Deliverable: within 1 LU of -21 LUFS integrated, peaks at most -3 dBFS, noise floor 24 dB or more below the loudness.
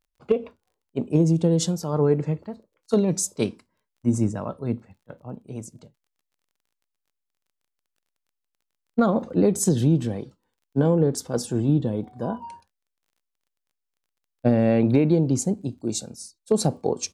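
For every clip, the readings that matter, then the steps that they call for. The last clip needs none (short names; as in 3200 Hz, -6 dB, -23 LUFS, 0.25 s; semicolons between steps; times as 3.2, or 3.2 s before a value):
ticks 21/s; loudness -23.5 LUFS; peak -9.0 dBFS; loudness target -21.0 LUFS
-> de-click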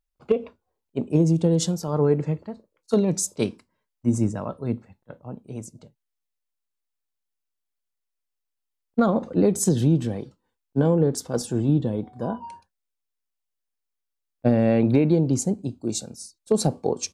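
ticks 0/s; loudness -23.5 LUFS; peak -9.0 dBFS; loudness target -21.0 LUFS
-> gain +2.5 dB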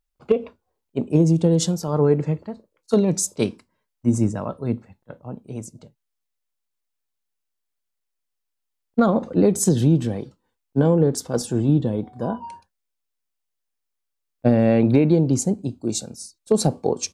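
loudness -21.0 LUFS; peak -6.5 dBFS; noise floor -79 dBFS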